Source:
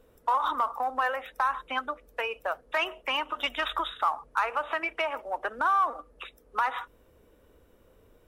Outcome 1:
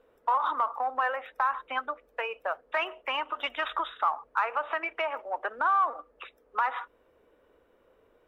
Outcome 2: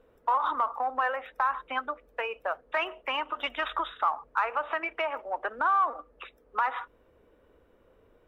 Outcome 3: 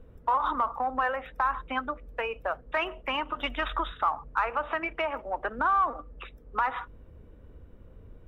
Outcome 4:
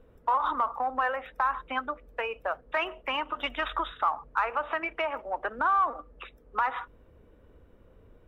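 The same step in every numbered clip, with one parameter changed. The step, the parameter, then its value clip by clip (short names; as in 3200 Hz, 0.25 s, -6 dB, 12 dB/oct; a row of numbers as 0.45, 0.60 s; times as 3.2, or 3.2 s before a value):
tone controls, bass: -14, -5, +14, +6 dB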